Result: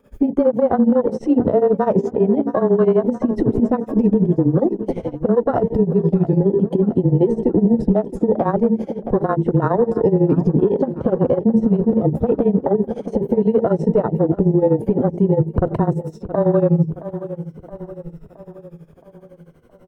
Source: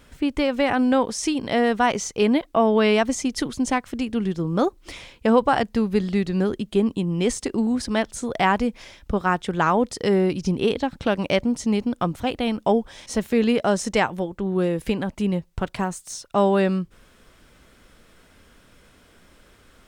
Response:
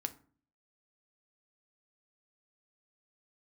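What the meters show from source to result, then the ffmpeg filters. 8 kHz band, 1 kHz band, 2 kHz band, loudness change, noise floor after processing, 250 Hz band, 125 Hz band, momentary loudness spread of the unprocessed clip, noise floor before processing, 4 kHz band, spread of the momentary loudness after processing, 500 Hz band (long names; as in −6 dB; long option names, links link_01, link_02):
below −20 dB, −1.5 dB, −12.5 dB, +5.0 dB, −46 dBFS, +5.5 dB, +10.0 dB, 8 LU, −55 dBFS, below −20 dB, 7 LU, +6.0 dB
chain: -filter_complex "[0:a]afftfilt=real='re*pow(10,9/40*sin(2*PI*(2*log(max(b,1)*sr/1024/100)/log(2)-(-0.48)*(pts-256)/sr)))':imag='im*pow(10,9/40*sin(2*PI*(2*log(max(b,1)*sr/1024/100)/log(2)-(-0.48)*(pts-256)/sr)))':win_size=1024:overlap=0.75,bandreject=frequency=60:width_type=h:width=6,bandreject=frequency=120:width_type=h:width=6,bandreject=frequency=180:width_type=h:width=6,bandreject=frequency=240:width_type=h:width=6,bandreject=frequency=300:width_type=h:width=6,bandreject=frequency=360:width_type=h:width=6,bandreject=frequency=420:width_type=h:width=6,bandreject=frequency=480:width_type=h:width=6,acrossover=split=2100|4200[link_01][link_02][link_03];[link_01]acompressor=threshold=-23dB:ratio=4[link_04];[link_02]acompressor=threshold=-34dB:ratio=4[link_05];[link_03]acompressor=threshold=-44dB:ratio=4[link_06];[link_04][link_05][link_06]amix=inputs=3:normalize=0,equalizer=frequency=125:width_type=o:width=1:gain=6,equalizer=frequency=250:width_type=o:width=1:gain=5,equalizer=frequency=500:width_type=o:width=1:gain=12,equalizer=frequency=2000:width_type=o:width=1:gain=-4,equalizer=frequency=4000:width_type=o:width=1:gain=-9,equalizer=frequency=8000:width_type=o:width=1:gain=-8,acompressor=threshold=-19dB:ratio=16,afreqshift=-21,tremolo=f=12:d=0.85,afwtdn=0.02,asplit=2[link_07][link_08];[link_08]aecho=0:1:670|1340|2010|2680|3350:0.141|0.0777|0.0427|0.0235|0.0129[link_09];[link_07][link_09]amix=inputs=2:normalize=0,alimiter=level_in=20dB:limit=-1dB:release=50:level=0:latency=1,volume=-5.5dB"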